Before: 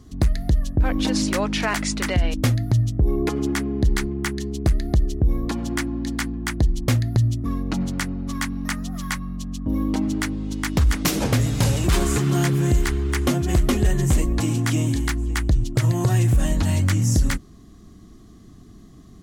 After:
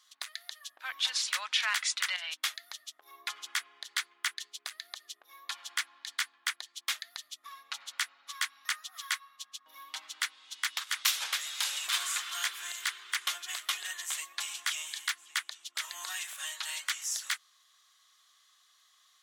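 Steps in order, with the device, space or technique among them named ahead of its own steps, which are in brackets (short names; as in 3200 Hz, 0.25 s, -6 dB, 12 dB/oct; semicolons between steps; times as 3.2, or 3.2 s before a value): headphones lying on a table (HPF 1200 Hz 24 dB/oct; bell 3500 Hz +7.5 dB 0.52 oct); gain -4.5 dB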